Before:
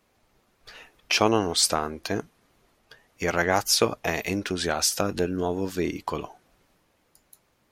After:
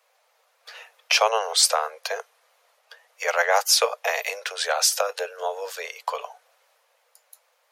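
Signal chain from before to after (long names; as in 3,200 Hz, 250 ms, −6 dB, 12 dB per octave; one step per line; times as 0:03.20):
Butterworth high-pass 470 Hz 96 dB per octave
level +3.5 dB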